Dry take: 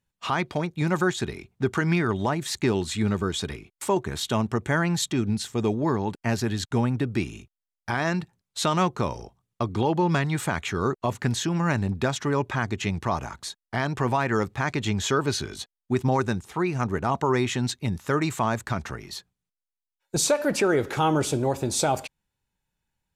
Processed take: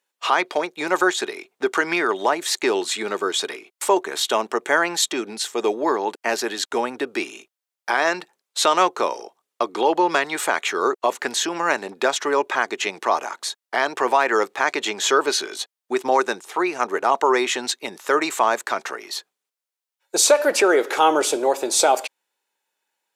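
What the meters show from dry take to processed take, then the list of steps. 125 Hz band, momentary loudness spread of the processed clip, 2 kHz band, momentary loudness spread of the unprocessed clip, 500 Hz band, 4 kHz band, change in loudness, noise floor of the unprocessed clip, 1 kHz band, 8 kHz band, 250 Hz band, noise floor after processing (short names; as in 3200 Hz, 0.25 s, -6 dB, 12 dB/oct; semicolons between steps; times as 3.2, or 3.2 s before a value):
-24.0 dB, 10 LU, +7.5 dB, 8 LU, +6.0 dB, +7.5 dB, +4.5 dB, under -85 dBFS, +7.5 dB, +7.5 dB, -2.5 dB, under -85 dBFS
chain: HPF 380 Hz 24 dB/oct; gain +7.5 dB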